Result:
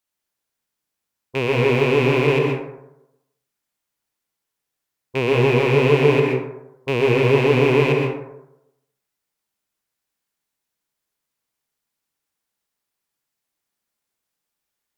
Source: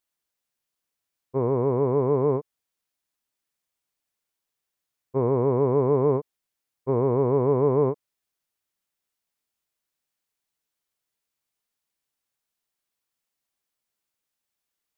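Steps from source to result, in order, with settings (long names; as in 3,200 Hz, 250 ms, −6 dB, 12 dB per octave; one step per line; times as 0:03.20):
loose part that buzzes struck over −34 dBFS, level −16 dBFS
tape wow and flutter 29 cents
dense smooth reverb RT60 0.86 s, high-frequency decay 0.4×, pre-delay 110 ms, DRR 0 dB
level +1 dB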